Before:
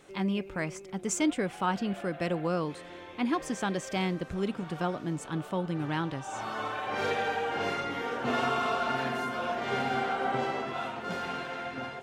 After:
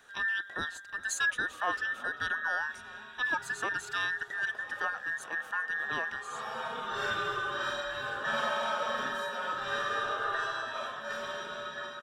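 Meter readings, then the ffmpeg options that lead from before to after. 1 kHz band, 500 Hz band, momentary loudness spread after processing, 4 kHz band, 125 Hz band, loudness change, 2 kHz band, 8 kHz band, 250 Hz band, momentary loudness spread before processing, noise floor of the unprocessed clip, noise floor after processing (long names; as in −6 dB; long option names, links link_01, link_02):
−3.0 dB, −6.5 dB, 7 LU, +1.0 dB, −17.0 dB, −1.0 dB, +6.0 dB, −2.5 dB, −18.0 dB, 7 LU, −46 dBFS, −48 dBFS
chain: -filter_complex "[0:a]afftfilt=real='real(if(between(b,1,1012),(2*floor((b-1)/92)+1)*92-b,b),0)':imag='imag(if(between(b,1,1012),(2*floor((b-1)/92)+1)*92-b,b),0)*if(between(b,1,1012),-1,1)':win_size=2048:overlap=0.75,lowshelf=frequency=110:gain=-5.5,asplit=2[link_01][link_02];[link_02]adelay=390.7,volume=-18dB,highshelf=frequency=4000:gain=-8.79[link_03];[link_01][link_03]amix=inputs=2:normalize=0,volume=-2.5dB"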